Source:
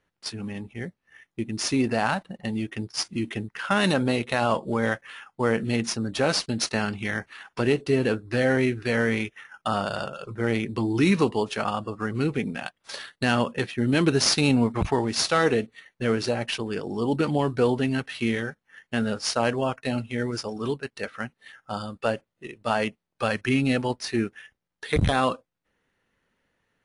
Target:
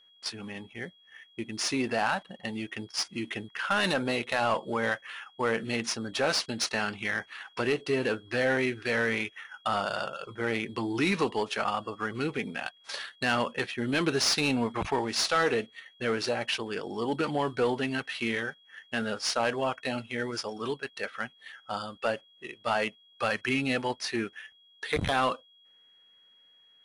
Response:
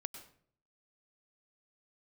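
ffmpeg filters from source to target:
-filter_complex "[0:a]asplit=2[a][b];[b]highpass=f=720:p=1,volume=13dB,asoftclip=type=tanh:threshold=-8dB[c];[a][c]amix=inputs=2:normalize=0,lowpass=f=6k:p=1,volume=-6dB,aeval=exprs='val(0)+0.00282*sin(2*PI*3300*n/s)':c=same,volume=-7dB"

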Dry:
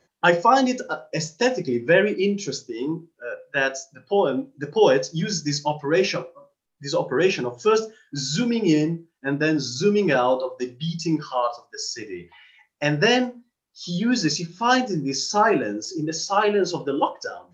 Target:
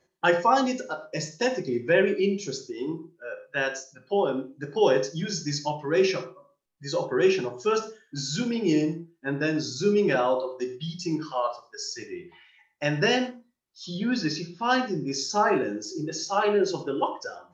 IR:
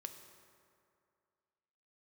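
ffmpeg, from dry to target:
-filter_complex "[0:a]asettb=1/sr,asplit=3[a][b][c];[a]atrim=end=13.864[d];[b]atrim=start=13.86:end=15.07,asetpts=PTS-STARTPTS,afade=t=in:d=0.004:c=qsin,afade=t=out:st=1.206:d=0.004:c=qsin,lowpass=f=5.2k:w=0.5412,lowpass=f=5.2k:w=1.3066[e];[c]atrim=start=15.066[f];[d][e]acrossfade=d=0.004:c1=hsin:c2=qsin[g];[g][f]acrossfade=d=0.004:c1=qsin:c2=hsin[h];[1:a]atrim=start_sample=2205,afade=t=out:st=0.17:d=0.01,atrim=end_sample=7938[i];[h][i]afir=irnorm=-1:irlink=0"

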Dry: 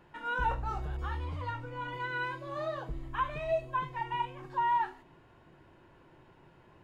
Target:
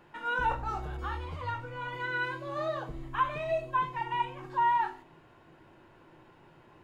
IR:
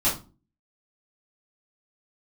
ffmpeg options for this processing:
-filter_complex "[0:a]lowshelf=f=120:g=-8.5,asplit=2[a][b];[1:a]atrim=start_sample=2205[c];[b][c]afir=irnorm=-1:irlink=0,volume=-21.5dB[d];[a][d]amix=inputs=2:normalize=0,volume=2dB"

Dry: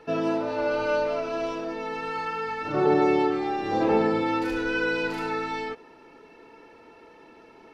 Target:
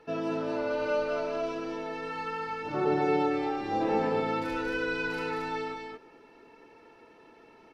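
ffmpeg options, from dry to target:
-af "aecho=1:1:226:0.668,volume=-6dB"

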